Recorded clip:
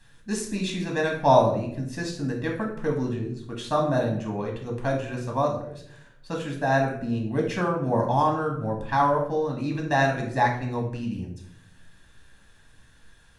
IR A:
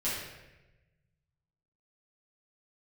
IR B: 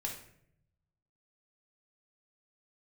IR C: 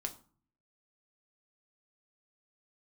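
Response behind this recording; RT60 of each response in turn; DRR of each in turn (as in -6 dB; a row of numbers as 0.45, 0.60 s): B; 1.1, 0.70, 0.45 s; -11.5, 0.0, 4.5 dB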